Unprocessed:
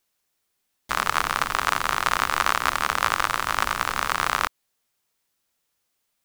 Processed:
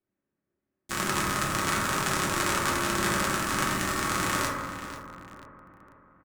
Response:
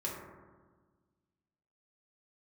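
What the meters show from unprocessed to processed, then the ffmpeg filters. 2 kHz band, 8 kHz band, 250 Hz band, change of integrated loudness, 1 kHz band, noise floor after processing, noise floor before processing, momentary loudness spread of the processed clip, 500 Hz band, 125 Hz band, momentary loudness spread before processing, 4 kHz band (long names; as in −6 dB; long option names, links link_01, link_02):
−4.0 dB, +2.5 dB, +9.5 dB, −3.5 dB, −5.5 dB, below −85 dBFS, −76 dBFS, 13 LU, +2.5 dB, +7.0 dB, 3 LU, −3.0 dB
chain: -filter_complex "[0:a]equalizer=frequency=125:width_type=o:width=1:gain=4,equalizer=frequency=250:width_type=o:width=1:gain=10,equalizer=frequency=1000:width_type=o:width=1:gain=-8,equalizer=frequency=8000:width_type=o:width=1:gain=8,equalizer=frequency=16000:width_type=o:width=1:gain=3,flanger=delay=9.6:depth=3.5:regen=-60:speed=1.4:shape=triangular,asplit=2[link_01][link_02];[link_02]adelay=491,lowpass=frequency=4900:poles=1,volume=-10.5dB,asplit=2[link_03][link_04];[link_04]adelay=491,lowpass=frequency=4900:poles=1,volume=0.46,asplit=2[link_05][link_06];[link_06]adelay=491,lowpass=frequency=4900:poles=1,volume=0.46,asplit=2[link_07][link_08];[link_08]adelay=491,lowpass=frequency=4900:poles=1,volume=0.46,asplit=2[link_09][link_10];[link_10]adelay=491,lowpass=frequency=4900:poles=1,volume=0.46[link_11];[link_01][link_03][link_05][link_07][link_09][link_11]amix=inputs=6:normalize=0[link_12];[1:a]atrim=start_sample=2205[link_13];[link_12][link_13]afir=irnorm=-1:irlink=0,acrossover=split=190|1900[link_14][link_15][link_16];[link_16]aeval=exprs='val(0)*gte(abs(val(0)),0.00447)':channel_layout=same[link_17];[link_14][link_15][link_17]amix=inputs=3:normalize=0"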